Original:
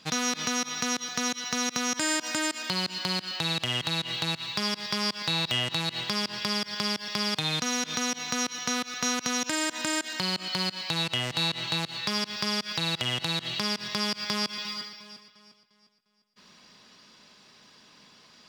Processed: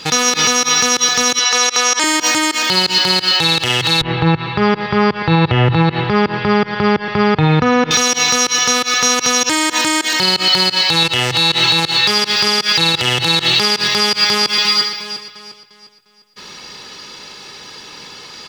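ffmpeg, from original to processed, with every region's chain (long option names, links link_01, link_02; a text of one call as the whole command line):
ffmpeg -i in.wav -filter_complex "[0:a]asettb=1/sr,asplit=3[link_01][link_02][link_03];[link_01]atrim=end=1.394[link_04];[link_02]atrim=start=1.39:end=2.04,asetpts=PTS-STARTPTS,afade=type=in:duration=0.004:curve=qsin,afade=type=out:start_time=0.646:duration=0.004:curve=qsin,highpass=480,equalizer=frequency=16000:width_type=o:width=0.72:gain=-11[link_05];[link_03]atrim=start=2.036[link_06];[link_04][link_05]acrossfade=duration=0.004:curve1=hsin:curve2=qsin[link_07];[link_07][link_06]acrossfade=duration=0.004:curve1=qsin:curve2=hsin,asettb=1/sr,asplit=3[link_08][link_09][link_10];[link_08]atrim=end=4.014[link_11];[link_09]atrim=start=4.01:end=7.91,asetpts=PTS-STARTPTS,afade=type=in:duration=0.004:curve=qsin,afade=type=out:start_time=3.896:duration=0.004:curve=qsin,lowpass=1800,aemphasis=mode=reproduction:type=bsi[link_12];[link_10]atrim=start=7.906[link_13];[link_11][link_12]acrossfade=duration=0.004:curve1=hsin:curve2=qsin[link_14];[link_14][link_13]acrossfade=duration=0.004:curve1=qsin:curve2=hsin,bandreject=frequency=60:width_type=h:width=6,bandreject=frequency=120:width_type=h:width=6,aecho=1:1:2.3:0.53,alimiter=level_in=20.5dB:limit=-1dB:release=50:level=0:latency=1,volume=-1dB" out.wav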